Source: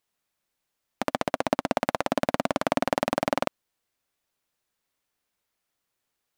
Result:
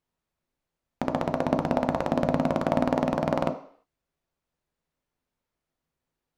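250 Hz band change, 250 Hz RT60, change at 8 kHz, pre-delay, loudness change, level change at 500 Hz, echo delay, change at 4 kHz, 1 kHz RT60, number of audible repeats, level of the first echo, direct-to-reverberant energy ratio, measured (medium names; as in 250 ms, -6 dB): +4.5 dB, 0.50 s, no reading, 10 ms, +1.0 dB, +1.5 dB, no echo, -7.0 dB, 0.55 s, no echo, no echo, 6.0 dB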